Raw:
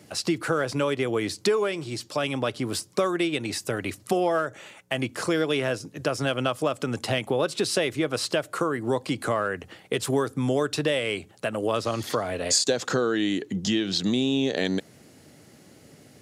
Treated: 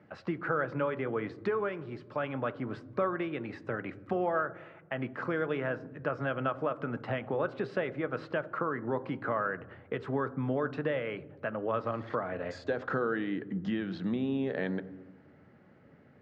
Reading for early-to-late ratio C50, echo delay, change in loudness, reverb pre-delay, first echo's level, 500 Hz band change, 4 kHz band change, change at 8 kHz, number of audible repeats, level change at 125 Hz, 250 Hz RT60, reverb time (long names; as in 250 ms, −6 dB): 18.0 dB, no echo audible, −7.5 dB, 3 ms, no echo audible, −7.0 dB, −22.0 dB, below −35 dB, no echo audible, −6.5 dB, 1.5 s, 1.1 s